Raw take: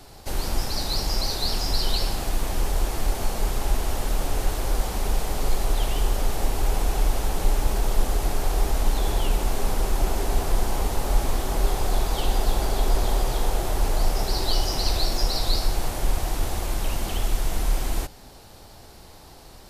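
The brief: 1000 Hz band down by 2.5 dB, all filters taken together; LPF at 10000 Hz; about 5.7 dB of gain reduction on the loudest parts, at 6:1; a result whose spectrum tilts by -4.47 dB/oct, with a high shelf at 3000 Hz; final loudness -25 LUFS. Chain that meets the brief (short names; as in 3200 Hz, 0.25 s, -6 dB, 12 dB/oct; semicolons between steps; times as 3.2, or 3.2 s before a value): LPF 10000 Hz; bell 1000 Hz -3 dB; high shelf 3000 Hz -3.5 dB; compressor 6:1, threshold -20 dBFS; gain +5.5 dB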